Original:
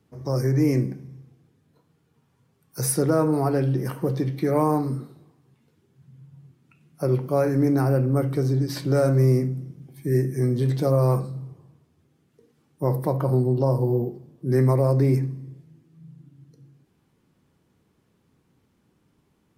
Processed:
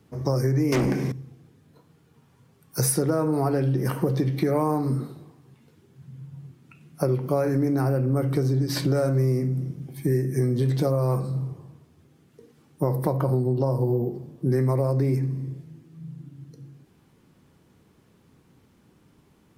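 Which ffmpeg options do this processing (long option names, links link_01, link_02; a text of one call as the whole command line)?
ffmpeg -i in.wav -filter_complex "[0:a]asettb=1/sr,asplit=3[link_01][link_02][link_03];[link_01]atrim=end=0.724[link_04];[link_02]atrim=start=0.72:end=1.12,asetpts=PTS-STARTPTS,afade=type=in:duration=0.004:curve=qsin,afade=type=out:start_time=0.396:duration=0.004:curve=qsin,asplit=2[link_05][link_06];[link_06]highpass=frequency=720:poles=1,volume=29dB,asoftclip=type=tanh:threshold=-12dB[link_07];[link_05][link_07]amix=inputs=2:normalize=0,lowpass=frequency=7100:poles=1,volume=-6dB[link_08];[link_03]atrim=start=1.116[link_09];[link_04][link_08]acrossfade=duration=0.004:curve1=hsin:curve2=qsin[link_10];[link_10][link_09]acrossfade=duration=0.004:curve1=qsin:curve2=hsin,acompressor=threshold=-27dB:ratio=6,volume=7dB" out.wav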